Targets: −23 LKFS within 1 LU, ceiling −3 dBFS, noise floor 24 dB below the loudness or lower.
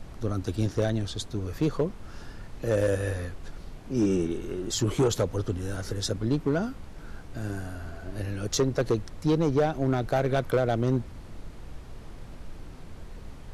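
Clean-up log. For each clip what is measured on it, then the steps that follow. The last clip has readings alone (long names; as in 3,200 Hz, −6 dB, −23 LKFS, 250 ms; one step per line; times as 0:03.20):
share of clipped samples 1.0%; peaks flattened at −17.5 dBFS; background noise floor −43 dBFS; target noise floor −53 dBFS; integrated loudness −28.5 LKFS; sample peak −17.5 dBFS; target loudness −23.0 LKFS
→ clipped peaks rebuilt −17.5 dBFS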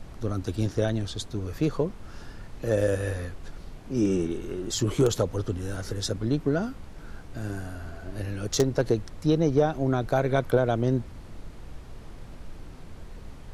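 share of clipped samples 0.0%; background noise floor −43 dBFS; target noise floor −52 dBFS
→ noise reduction from a noise print 9 dB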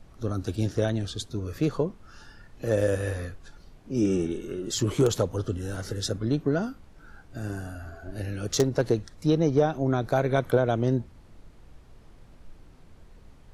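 background noise floor −52 dBFS; integrated loudness −27.5 LKFS; sample peak −8.5 dBFS; target loudness −23.0 LKFS
→ level +4.5 dB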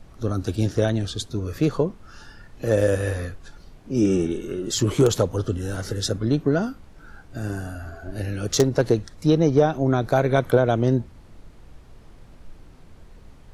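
integrated loudness −23.0 LKFS; sample peak −4.0 dBFS; background noise floor −48 dBFS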